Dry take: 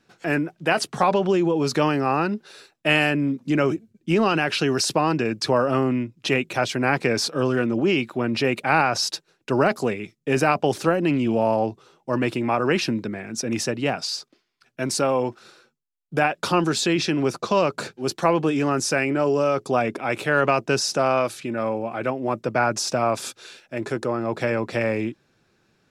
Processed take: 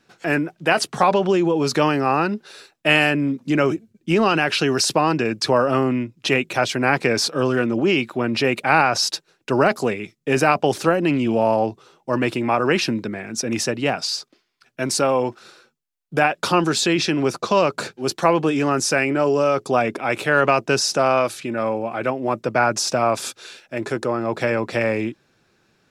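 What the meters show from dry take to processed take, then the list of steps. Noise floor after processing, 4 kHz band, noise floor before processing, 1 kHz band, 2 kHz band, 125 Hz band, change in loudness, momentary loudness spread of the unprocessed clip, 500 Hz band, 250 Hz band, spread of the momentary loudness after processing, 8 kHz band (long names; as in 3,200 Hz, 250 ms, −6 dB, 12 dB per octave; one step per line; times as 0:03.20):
−67 dBFS, +3.5 dB, −69 dBFS, +3.0 dB, +3.5 dB, +1.0 dB, +2.5 dB, 8 LU, +2.5 dB, +1.5 dB, 8 LU, +3.5 dB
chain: low-shelf EQ 350 Hz −3 dB
level +3.5 dB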